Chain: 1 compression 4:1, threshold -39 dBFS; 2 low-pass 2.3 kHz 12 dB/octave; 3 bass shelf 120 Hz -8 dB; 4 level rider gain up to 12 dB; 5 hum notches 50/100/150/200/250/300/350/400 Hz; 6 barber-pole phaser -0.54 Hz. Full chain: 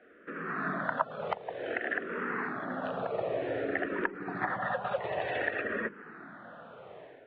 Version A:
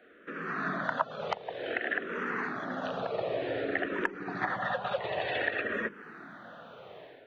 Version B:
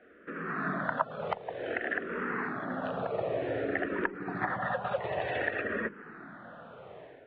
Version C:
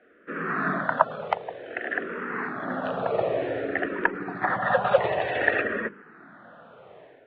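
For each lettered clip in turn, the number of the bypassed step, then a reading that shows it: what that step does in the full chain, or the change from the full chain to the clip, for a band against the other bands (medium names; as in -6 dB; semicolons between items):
2, 4 kHz band +7.0 dB; 3, 125 Hz band +3.0 dB; 1, mean gain reduction 8.5 dB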